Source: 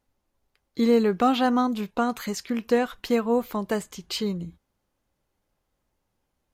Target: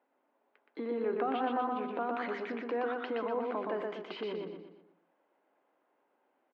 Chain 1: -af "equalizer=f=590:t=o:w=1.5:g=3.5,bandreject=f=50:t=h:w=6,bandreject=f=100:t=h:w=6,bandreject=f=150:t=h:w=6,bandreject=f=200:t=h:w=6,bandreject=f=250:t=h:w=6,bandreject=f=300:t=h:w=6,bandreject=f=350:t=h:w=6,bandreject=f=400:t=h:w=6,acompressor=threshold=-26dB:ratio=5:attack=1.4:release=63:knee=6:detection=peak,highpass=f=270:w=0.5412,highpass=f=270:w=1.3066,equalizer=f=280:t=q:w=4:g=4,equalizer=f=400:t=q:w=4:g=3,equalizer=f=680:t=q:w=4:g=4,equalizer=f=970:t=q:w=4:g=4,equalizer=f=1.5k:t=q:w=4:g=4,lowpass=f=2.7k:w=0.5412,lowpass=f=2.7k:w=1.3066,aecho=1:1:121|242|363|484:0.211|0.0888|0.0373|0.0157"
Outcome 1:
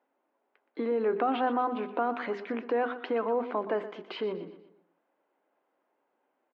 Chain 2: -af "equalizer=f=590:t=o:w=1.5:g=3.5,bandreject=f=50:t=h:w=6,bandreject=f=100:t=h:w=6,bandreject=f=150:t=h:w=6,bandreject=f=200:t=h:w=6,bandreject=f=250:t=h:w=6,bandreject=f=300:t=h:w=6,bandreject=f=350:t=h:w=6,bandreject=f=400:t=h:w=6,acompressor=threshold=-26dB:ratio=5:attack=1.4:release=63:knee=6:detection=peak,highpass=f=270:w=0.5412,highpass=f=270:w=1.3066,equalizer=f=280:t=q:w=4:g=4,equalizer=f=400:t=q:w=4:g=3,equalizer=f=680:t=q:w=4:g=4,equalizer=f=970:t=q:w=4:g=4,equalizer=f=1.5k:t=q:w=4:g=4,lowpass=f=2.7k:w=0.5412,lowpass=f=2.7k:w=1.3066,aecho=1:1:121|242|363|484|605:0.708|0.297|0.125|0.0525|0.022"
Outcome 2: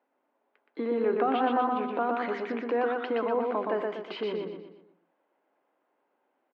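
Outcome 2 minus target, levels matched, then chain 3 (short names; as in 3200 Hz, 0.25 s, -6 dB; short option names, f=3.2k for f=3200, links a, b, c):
compressor: peak gain reduction -6.5 dB
-af "equalizer=f=590:t=o:w=1.5:g=3.5,bandreject=f=50:t=h:w=6,bandreject=f=100:t=h:w=6,bandreject=f=150:t=h:w=6,bandreject=f=200:t=h:w=6,bandreject=f=250:t=h:w=6,bandreject=f=300:t=h:w=6,bandreject=f=350:t=h:w=6,bandreject=f=400:t=h:w=6,acompressor=threshold=-34dB:ratio=5:attack=1.4:release=63:knee=6:detection=peak,highpass=f=270:w=0.5412,highpass=f=270:w=1.3066,equalizer=f=280:t=q:w=4:g=4,equalizer=f=400:t=q:w=4:g=3,equalizer=f=680:t=q:w=4:g=4,equalizer=f=970:t=q:w=4:g=4,equalizer=f=1.5k:t=q:w=4:g=4,lowpass=f=2.7k:w=0.5412,lowpass=f=2.7k:w=1.3066,aecho=1:1:121|242|363|484|605:0.708|0.297|0.125|0.0525|0.022"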